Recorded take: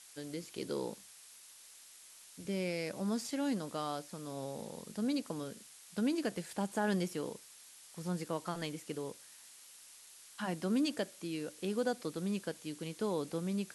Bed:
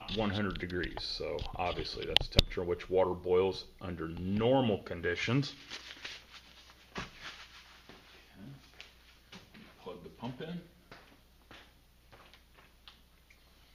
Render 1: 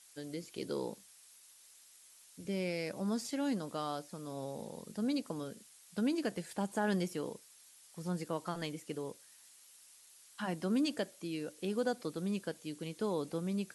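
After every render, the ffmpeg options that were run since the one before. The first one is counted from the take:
-af "afftdn=nr=6:nf=-57"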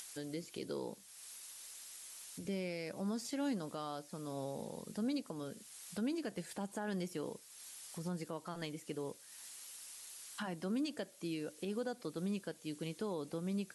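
-af "acompressor=mode=upward:threshold=0.00794:ratio=2.5,alimiter=level_in=2:limit=0.0631:level=0:latency=1:release=243,volume=0.501"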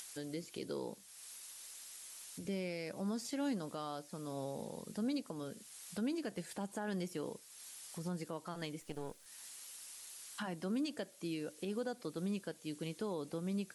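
-filter_complex "[0:a]asettb=1/sr,asplit=3[s0][s1][s2];[s0]atrim=end=8.814[s3];[s1]atrim=start=8.81:end=9.26,asetpts=PTS-STARTPTS,afade=t=in:d=0.004:c=qsin,afade=t=out:st=0.446:d=0.004:c=qsin,aeval=exprs='if(lt(val(0),0),0.251*val(0),val(0))':c=same[s4];[s2]atrim=start=9.256[s5];[s3][s4]acrossfade=d=0.004:c1=hsin:c2=qsin[s6];[s6][s5]acrossfade=d=0.004:c1=qsin:c2=hsin"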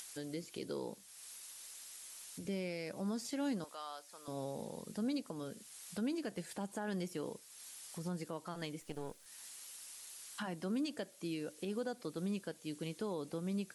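-filter_complex "[0:a]asettb=1/sr,asplit=3[s0][s1][s2];[s0]atrim=end=3.644[s3];[s1]atrim=start=3.64:end=4.28,asetpts=PTS-STARTPTS,afade=t=in:d=0.004:c=qsin,afade=t=out:st=0.636:d=0.004:c=qsin,highpass=810[s4];[s2]atrim=start=4.276[s5];[s3][s4]acrossfade=d=0.004:c1=hsin:c2=qsin[s6];[s6][s5]acrossfade=d=0.004:c1=qsin:c2=hsin"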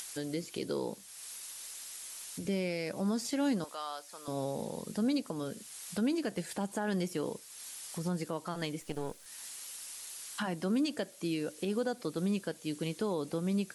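-af "volume=2.11"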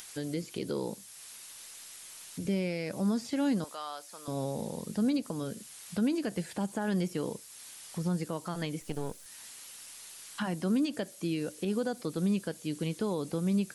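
-filter_complex "[0:a]acrossover=split=3300[s0][s1];[s1]acompressor=threshold=0.001:ratio=4:attack=1:release=60[s2];[s0][s2]amix=inputs=2:normalize=0,bass=f=250:g=5,treble=f=4000:g=12"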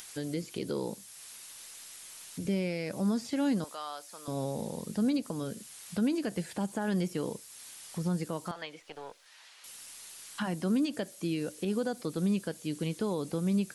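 -filter_complex "[0:a]asettb=1/sr,asplit=3[s0][s1][s2];[s0]atrim=end=8.514[s3];[s1]atrim=start=8.51:end=9.64,asetpts=PTS-STARTPTS,afade=t=in:d=0.004:c=qsin,afade=t=out:st=1.126:d=0.004:c=qsin,acrossover=split=500 4900:gain=0.0794 1 0.112[s4][s5][s6];[s4][s5][s6]amix=inputs=3:normalize=0[s7];[s2]atrim=start=9.636[s8];[s3][s7]acrossfade=d=0.004:c1=hsin:c2=qsin[s9];[s9][s8]acrossfade=d=0.004:c1=qsin:c2=hsin"

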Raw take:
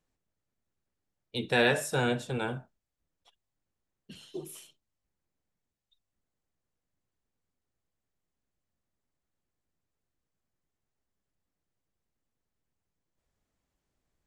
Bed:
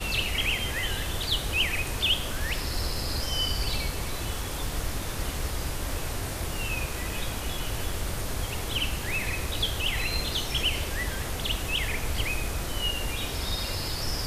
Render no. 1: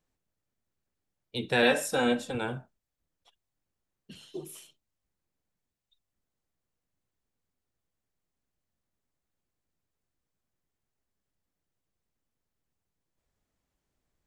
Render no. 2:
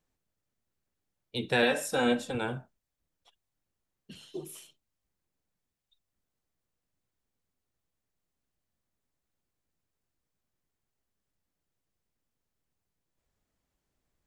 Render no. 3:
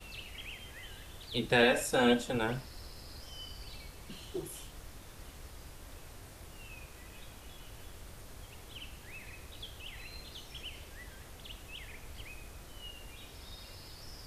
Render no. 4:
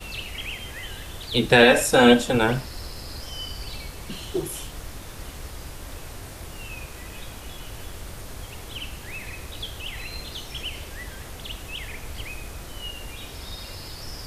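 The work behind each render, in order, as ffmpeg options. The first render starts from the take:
-filter_complex "[0:a]asettb=1/sr,asplit=3[s0][s1][s2];[s0]atrim=end=1.624[s3];[s1]atrim=start=1.62:end=2.35,asetpts=PTS-STARTPTS,afade=t=in:d=0.004:c=qsin,afade=t=out:st=0.726:d=0.004:c=qsin,aecho=1:1:3.8:0.79,atrim=end_sample=32193[s4];[s2]atrim=start=2.346[s5];[s3][s4]acrossfade=d=0.004:c1=hsin:c2=qsin[s6];[s6][s5]acrossfade=d=0.004:c1=qsin:c2=hsin"
-af "alimiter=limit=0.237:level=0:latency=1:release=432"
-filter_complex "[1:a]volume=0.119[s0];[0:a][s0]amix=inputs=2:normalize=0"
-af "volume=3.98,alimiter=limit=0.794:level=0:latency=1"

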